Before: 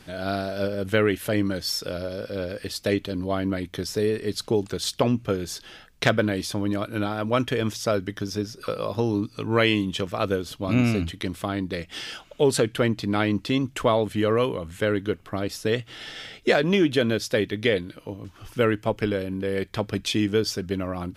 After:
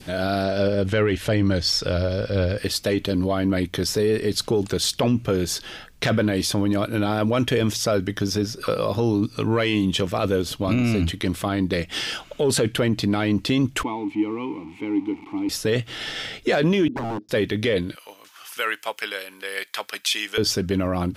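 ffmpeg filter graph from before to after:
-filter_complex "[0:a]asettb=1/sr,asplit=3[a][b][c];[a]atrim=end=0.434[d];[b]atrim=start=0.43:end=2.58,asetpts=PTS-STARTPTS,afade=t=in:d=0.004:c=qsin,afade=t=out:st=2.146:d=0.004:c=qsin,lowpass=6.7k,asubboost=boost=5.5:cutoff=130[e];[c]atrim=start=2.576[f];[d][e]acrossfade=d=0.004:c1=hsin:c2=qsin[g];[g][f]acrossfade=d=0.004:c1=qsin:c2=hsin,asettb=1/sr,asplit=3[h][i][j];[h]atrim=end=13.834[k];[i]atrim=start=13.83:end=15.49,asetpts=PTS-STARTPTS,afade=t=in:d=0.004:c=qsin,afade=t=out:st=1.656:d=0.004:c=qsin,aeval=exprs='val(0)+0.5*0.0335*sgn(val(0))':c=same,asplit=3[l][m][n];[l]bandpass=f=300:t=q:w=8,volume=0dB[o];[m]bandpass=f=870:t=q:w=8,volume=-6dB[p];[n]bandpass=f=2.24k:t=q:w=8,volume=-9dB[q];[o][p][q]amix=inputs=3:normalize=0[r];[j]atrim=start=15.486[s];[k][r]acrossfade=d=0.004:c1=hsin:c2=qsin[t];[t][s]acrossfade=d=0.004:c1=qsin:c2=hsin,asettb=1/sr,asplit=3[u][v][w];[u]atrim=end=16.884[x];[v]atrim=start=16.88:end=17.29,asetpts=PTS-STARTPTS,afade=t=in:d=0.004:c=qsin,afade=t=out:st=0.406:d=0.004:c=qsin,asuperpass=centerf=280:order=4:qfactor=1.9,aeval=exprs='0.0355*(abs(mod(val(0)/0.0355+3,4)-2)-1)':c=same[y];[w]atrim=start=17.286[z];[x][y]acrossfade=d=0.004:c1=hsin:c2=qsin[aa];[aa][z]acrossfade=d=0.004:c1=qsin:c2=hsin,asettb=1/sr,asplit=3[ab][ac][ad];[ab]atrim=end=17.954[ae];[ac]atrim=start=17.95:end=20.38,asetpts=PTS-STARTPTS,afade=t=in:d=0.004:c=qsin,afade=t=out:st=2.426:d=0.004:c=qsin,highpass=1.2k,highshelf=f=9.6k:g=9[af];[ad]atrim=start=20.376[ag];[ae][af]acrossfade=d=0.004:c1=hsin:c2=qsin[ah];[ah][ag]acrossfade=d=0.004:c1=qsin:c2=hsin,adynamicequalizer=threshold=0.01:dfrequency=1300:dqfactor=1.3:tfrequency=1300:tqfactor=1.3:attack=5:release=100:ratio=0.375:range=2:mode=cutabove:tftype=bell,acontrast=38,alimiter=limit=-14.5dB:level=0:latency=1:release=11,volume=2dB"

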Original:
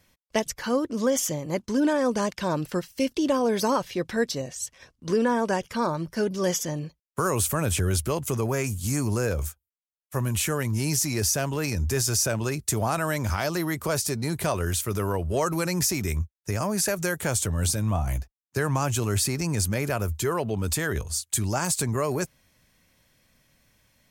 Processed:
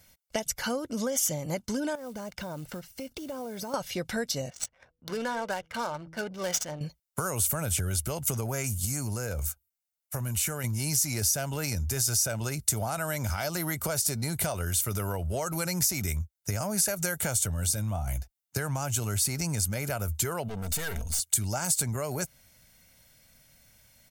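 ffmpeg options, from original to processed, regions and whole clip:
-filter_complex "[0:a]asettb=1/sr,asplit=3[a][b][c];[a]atrim=end=1.954[d];[b]atrim=start=1.95:end=3.74,asetpts=PTS-STARTPTS,afade=t=in:d=0.004:c=qsin,afade=t=out:st=1.786:d=0.004:c=qsin,highshelf=f=2.2k:g=-9.5,acompressor=threshold=-35dB:ratio=5:attack=3.2:release=140:knee=1:detection=peak,acrusher=bits=6:mode=log:mix=0:aa=0.000001[e];[c]atrim=start=3.736[f];[d][e]acrossfade=d=0.004:c1=hsin:c2=qsin[g];[g][f]acrossfade=d=0.004:c1=qsin:c2=hsin,asettb=1/sr,asplit=3[h][i][j];[h]atrim=end=4.504[k];[i]atrim=start=4.5:end=6.81,asetpts=PTS-STARTPTS,afade=t=in:d=0.004:c=qsin,afade=t=out:st=2.306:d=0.004:c=qsin,lowshelf=f=480:g=-11.5,bandreject=f=162.4:t=h:w=4,bandreject=f=324.8:t=h:w=4,bandreject=f=487.2:t=h:w=4,adynamicsmooth=sensitivity=7.5:basefreq=960[l];[j]atrim=start=6.806[m];[k][l]acrossfade=d=0.004:c1=hsin:c2=qsin[n];[n][m]acrossfade=d=0.004:c1=qsin:c2=hsin,asettb=1/sr,asplit=3[o][p][q];[o]atrim=end=8.854[r];[p]atrim=start=8.85:end=10.64,asetpts=PTS-STARTPTS,afade=t=in:d=0.004:c=qsin,afade=t=out:st=1.786:d=0.004:c=qsin,bandreject=f=3.3k:w=14,acompressor=threshold=-31dB:ratio=2.5:attack=3.2:release=140:knee=1:detection=peak[s];[q]atrim=start=10.636[t];[r][s]acrossfade=d=0.004:c1=hsin:c2=qsin[u];[u][t]acrossfade=d=0.004:c1=qsin:c2=hsin,asettb=1/sr,asplit=3[v][w][x];[v]atrim=end=20.484[y];[w]atrim=start=20.48:end=21.2,asetpts=PTS-STARTPTS,afade=t=in:d=0.004:c=qsin,afade=t=out:st=0.716:d=0.004:c=qsin,asubboost=boost=7:cutoff=120,aeval=exprs='(tanh(39.8*val(0)+0.4)-tanh(0.4))/39.8':c=same,aecho=1:1:4.4:0.43,atrim=end_sample=31752[z];[x]atrim=start=21.196[aa];[y][z]acrossfade=d=0.004:c1=hsin:c2=qsin[ab];[ab][aa]acrossfade=d=0.004:c1=qsin:c2=hsin,aecho=1:1:1.4:0.42,acompressor=threshold=-28dB:ratio=6,highshelf=f=5.8k:g=9.5"

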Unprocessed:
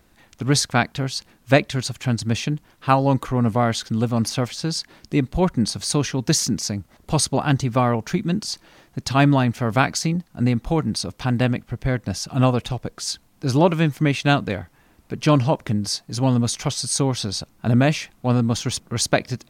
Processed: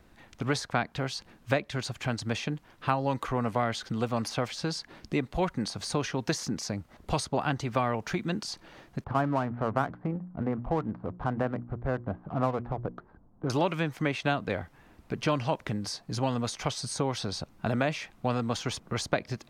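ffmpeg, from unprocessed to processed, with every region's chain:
-filter_complex "[0:a]asettb=1/sr,asplit=3[a][b][c];[a]atrim=end=9.044[d];[b]atrim=start=9.04:end=13.5,asetpts=PTS-STARTPTS,afade=t=in:d=0.004:c=qsin,afade=t=out:st=4.456:d=0.004:c=qsin,lowpass=f=1.4k:w=0.5412,lowpass=f=1.4k:w=1.3066,bandreject=f=60:t=h:w=6,bandreject=f=120:t=h:w=6,bandreject=f=180:t=h:w=6,bandreject=f=240:t=h:w=6,bandreject=f=300:t=h:w=6,bandreject=f=360:t=h:w=6,adynamicsmooth=sensitivity=7:basefreq=1.1k[e];[c]atrim=start=13.496[f];[d][e]acrossfade=d=0.004:c1=hsin:c2=qsin[g];[g][f]acrossfade=d=0.004:c1=qsin:c2=hsin,highshelf=f=4.9k:g=-10.5,acrossover=split=430|1500[h][i][j];[h]acompressor=threshold=-33dB:ratio=4[k];[i]acompressor=threshold=-28dB:ratio=4[l];[j]acompressor=threshold=-35dB:ratio=4[m];[k][l][m]amix=inputs=3:normalize=0"

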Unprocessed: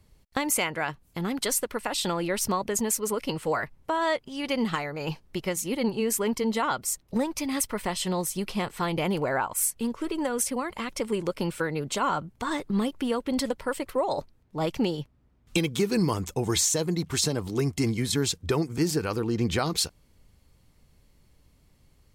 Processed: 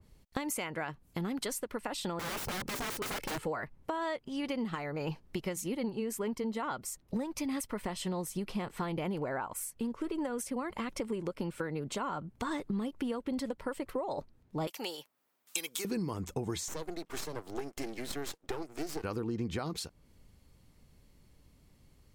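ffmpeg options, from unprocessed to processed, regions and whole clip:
-filter_complex "[0:a]asettb=1/sr,asplit=3[a][b][c];[a]atrim=end=2.194[d];[b]atrim=start=2.19:end=3.46,asetpts=PTS-STARTPTS,afade=t=in:d=0.004:c=qsin,afade=t=out:st=1.266:d=0.004:c=qsin,equalizer=f=160:w=0.51:g=3.5,aecho=1:1:2.3:0.58,atrim=end_sample=56007,aeval=exprs='(mod(20*val(0)+1,2)-1)/20':c=same[e];[c]atrim=start=3.456[f];[d][e]acrossfade=d=0.004:c1=hsin:c2=qsin[g];[g][f]acrossfade=d=0.004:c1=qsin:c2=hsin,asettb=1/sr,asplit=3[h][i][j];[h]atrim=end=14.674[k];[i]atrim=start=14.67:end=15.85,asetpts=PTS-STARTPTS,afade=t=in:d=0.004:c=qsin,afade=t=out:st=1.176:d=0.004:c=qsin,highpass=720,aemphasis=mode=production:type=50fm[l];[j]atrim=start=15.846[m];[k][l]acrossfade=d=0.004:c1=hsin:c2=qsin[n];[n][m]acrossfade=d=0.004:c1=qsin:c2=hsin,asettb=1/sr,asplit=3[o][p][q];[o]atrim=end=16.684[r];[p]atrim=start=16.68:end=19.04,asetpts=PTS-STARTPTS,afade=t=in:d=0.004:c=qsin,afade=t=out:st=2.356:d=0.004:c=qsin,highpass=f=320:w=0.5412,highpass=f=320:w=1.3066,aeval=exprs='max(val(0),0)':c=same[s];[q]atrim=start=19.036[t];[r][s]acrossfade=d=0.004:c1=hsin:c2=qsin[u];[u][t]acrossfade=d=0.004:c1=qsin:c2=hsin,equalizer=f=240:t=o:w=1.6:g=3,acompressor=threshold=-30dB:ratio=6,adynamicequalizer=threshold=0.00224:dfrequency=2400:dqfactor=0.7:tfrequency=2400:tqfactor=0.7:attack=5:release=100:ratio=0.375:range=2.5:mode=cutabove:tftype=highshelf,volume=-2dB"

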